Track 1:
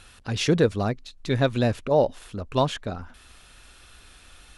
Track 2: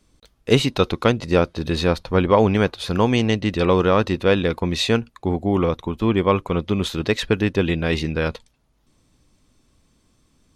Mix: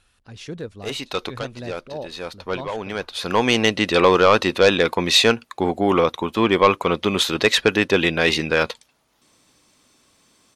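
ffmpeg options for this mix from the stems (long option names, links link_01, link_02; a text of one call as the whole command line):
ffmpeg -i stem1.wav -i stem2.wav -filter_complex "[0:a]volume=-12.5dB,asplit=2[link_01][link_02];[1:a]highpass=frequency=680:poles=1,aeval=exprs='0.668*sin(PI/2*2*val(0)/0.668)':channel_layout=same,adelay=350,volume=-1dB[link_03];[link_02]apad=whole_len=481006[link_04];[link_03][link_04]sidechaincompress=threshold=-45dB:ratio=12:attack=16:release=786[link_05];[link_01][link_05]amix=inputs=2:normalize=0" out.wav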